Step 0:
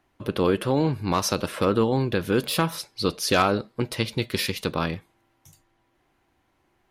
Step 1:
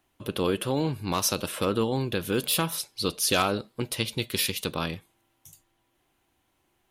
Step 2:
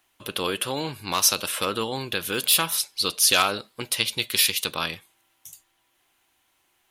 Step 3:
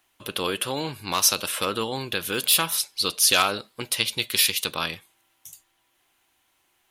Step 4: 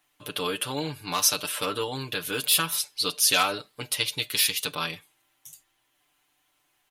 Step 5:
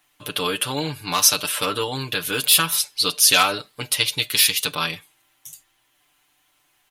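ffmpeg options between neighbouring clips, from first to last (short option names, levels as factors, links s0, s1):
-af "aexciter=amount=2:drive=5.1:freq=2700,volume=0.596"
-af "tiltshelf=f=660:g=-7.5"
-af anull
-af "aecho=1:1:6.8:0.78,volume=0.596"
-af "equalizer=f=420:t=o:w=2.2:g=-2.5,volume=2.11"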